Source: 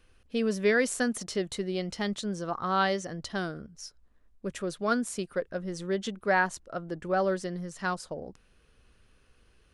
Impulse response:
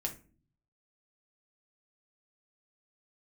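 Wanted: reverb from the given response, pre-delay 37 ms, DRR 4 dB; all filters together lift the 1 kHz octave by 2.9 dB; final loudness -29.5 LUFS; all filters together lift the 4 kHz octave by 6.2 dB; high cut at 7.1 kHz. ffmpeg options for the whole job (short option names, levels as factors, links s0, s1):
-filter_complex "[0:a]lowpass=7100,equalizer=f=1000:t=o:g=3.5,equalizer=f=4000:t=o:g=8,asplit=2[s0][s1];[1:a]atrim=start_sample=2205,adelay=37[s2];[s1][s2]afir=irnorm=-1:irlink=0,volume=0.562[s3];[s0][s3]amix=inputs=2:normalize=0,volume=0.794"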